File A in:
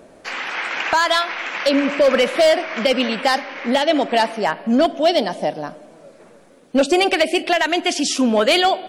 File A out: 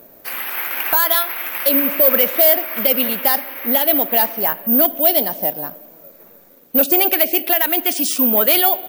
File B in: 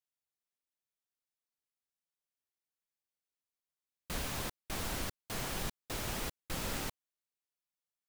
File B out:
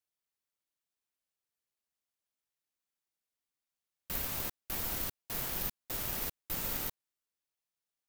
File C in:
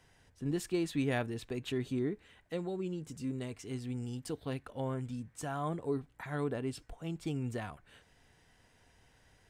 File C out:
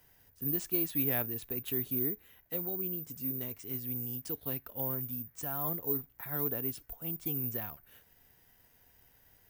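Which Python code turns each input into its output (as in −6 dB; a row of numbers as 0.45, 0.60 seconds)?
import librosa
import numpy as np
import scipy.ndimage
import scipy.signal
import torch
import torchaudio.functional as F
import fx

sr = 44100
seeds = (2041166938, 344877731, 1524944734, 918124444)

y = (np.kron(x[::3], np.eye(3)[0]) * 3)[:len(x)]
y = y * librosa.db_to_amplitude(-3.5)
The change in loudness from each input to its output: +3.5, +3.5, +4.5 LU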